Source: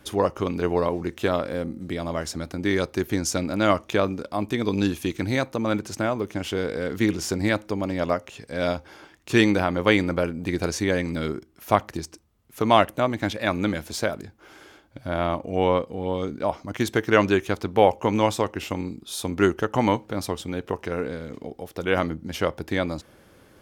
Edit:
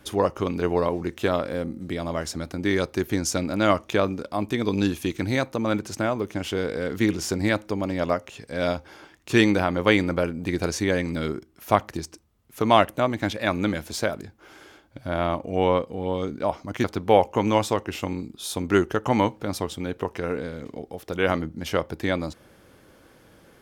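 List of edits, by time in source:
16.84–17.52 s: delete

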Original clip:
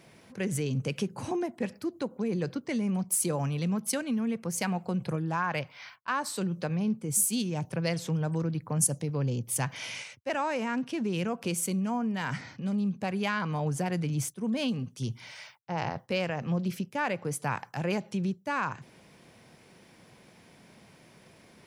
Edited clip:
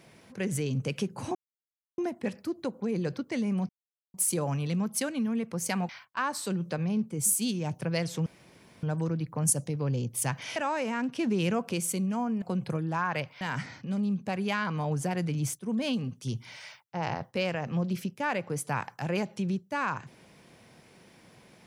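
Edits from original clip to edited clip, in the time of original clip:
1.35 s: insert silence 0.63 s
3.06 s: insert silence 0.45 s
4.81–5.80 s: move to 12.16 s
8.17 s: insert room tone 0.57 s
9.90–10.30 s: delete
10.92–11.43 s: gain +3 dB

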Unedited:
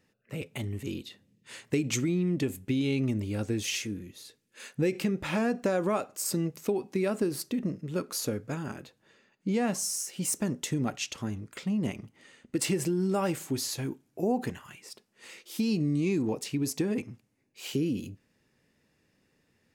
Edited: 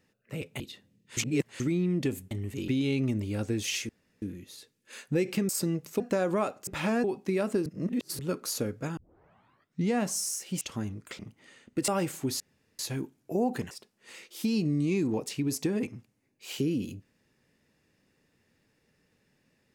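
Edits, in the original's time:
0.60–0.97 s: move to 2.68 s
1.54–1.97 s: reverse
3.89 s: insert room tone 0.33 s
5.16–5.53 s: swap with 6.20–6.71 s
7.33–7.86 s: reverse
8.64 s: tape start 0.94 s
10.28–11.07 s: delete
11.65–11.96 s: delete
12.65–13.15 s: delete
13.67 s: insert room tone 0.39 s
14.59–14.86 s: delete

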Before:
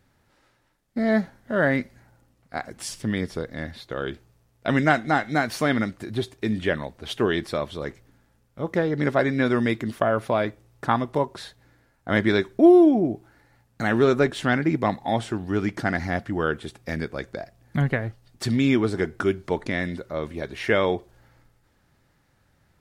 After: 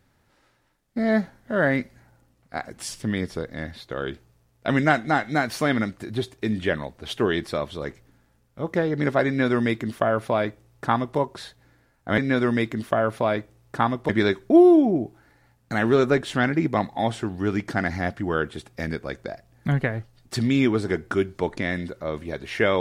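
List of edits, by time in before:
9.27–11.18 s: copy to 12.18 s

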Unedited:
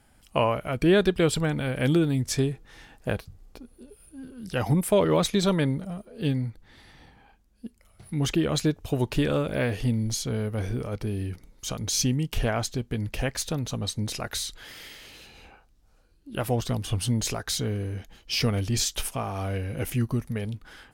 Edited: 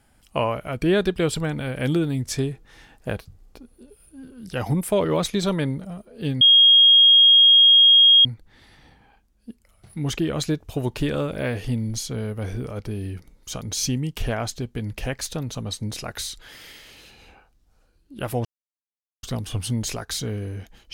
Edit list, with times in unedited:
6.41 s: add tone 3.26 kHz -9.5 dBFS 1.84 s
16.61 s: insert silence 0.78 s

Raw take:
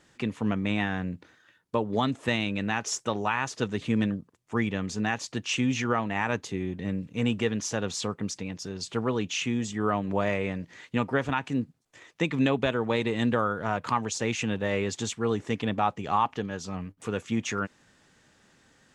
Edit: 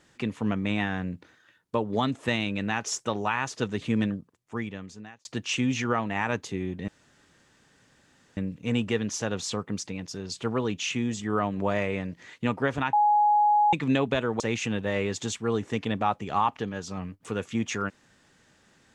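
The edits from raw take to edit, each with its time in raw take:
4.02–5.25 s: fade out
6.88 s: insert room tone 1.49 s
11.44–12.24 s: bleep 835 Hz -17.5 dBFS
12.91–14.17 s: delete

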